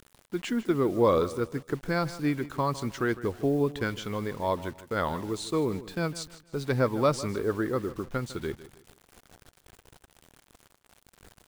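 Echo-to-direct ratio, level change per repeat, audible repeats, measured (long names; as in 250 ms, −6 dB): −15.5 dB, −9.5 dB, 2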